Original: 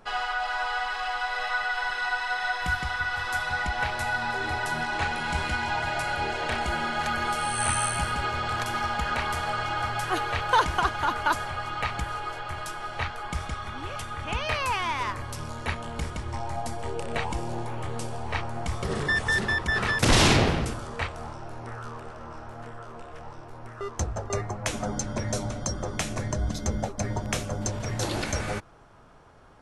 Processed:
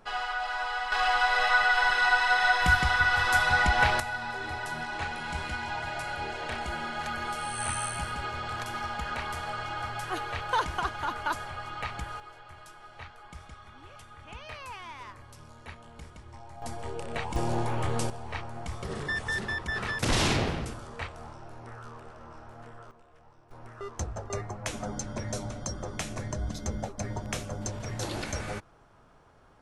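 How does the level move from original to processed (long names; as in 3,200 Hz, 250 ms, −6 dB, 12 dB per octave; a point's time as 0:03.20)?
−3 dB
from 0:00.92 +5 dB
from 0:04.00 −6 dB
from 0:12.20 −14.5 dB
from 0:16.62 −4.5 dB
from 0:17.36 +3.5 dB
from 0:18.10 −6.5 dB
from 0:22.91 −16 dB
from 0:23.51 −5 dB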